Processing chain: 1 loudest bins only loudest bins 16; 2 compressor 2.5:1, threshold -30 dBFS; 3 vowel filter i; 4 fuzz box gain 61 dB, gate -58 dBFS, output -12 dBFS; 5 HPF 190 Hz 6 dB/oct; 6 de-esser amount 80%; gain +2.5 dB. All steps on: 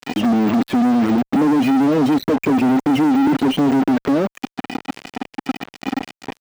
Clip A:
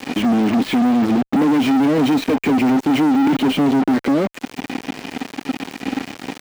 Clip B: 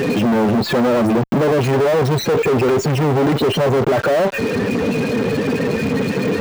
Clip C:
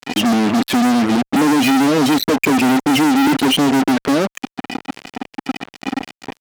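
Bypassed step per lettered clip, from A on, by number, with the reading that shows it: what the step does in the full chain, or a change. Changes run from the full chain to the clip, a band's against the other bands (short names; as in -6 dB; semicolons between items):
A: 1, 4 kHz band +3.0 dB; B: 3, 250 Hz band -9.0 dB; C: 6, 4 kHz band +9.0 dB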